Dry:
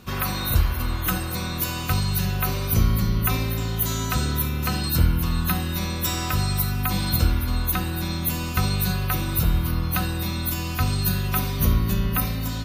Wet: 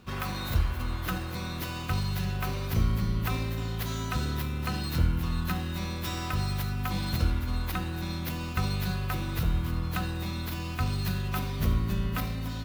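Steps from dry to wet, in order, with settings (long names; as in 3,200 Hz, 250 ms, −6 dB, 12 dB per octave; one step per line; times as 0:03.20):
running median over 5 samples
level −6 dB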